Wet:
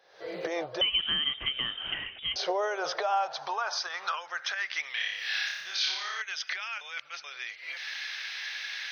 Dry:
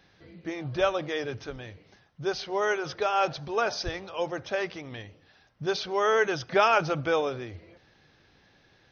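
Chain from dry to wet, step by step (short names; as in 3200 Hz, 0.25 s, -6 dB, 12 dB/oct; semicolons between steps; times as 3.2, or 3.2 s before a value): recorder AGC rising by 67 dB/s; fifteen-band EQ 100 Hz +4 dB, 250 Hz -12 dB, 2500 Hz -4 dB; compressor, threshold -25 dBFS, peak gain reduction 9 dB; high-pass sweep 520 Hz -> 2200 Hz, 2.62–4.95; 0.81–2.36 inverted band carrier 3600 Hz; 4.91–6.22 flutter echo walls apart 5 m, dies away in 0.89 s; 6.81–7.24 reverse; gain -4 dB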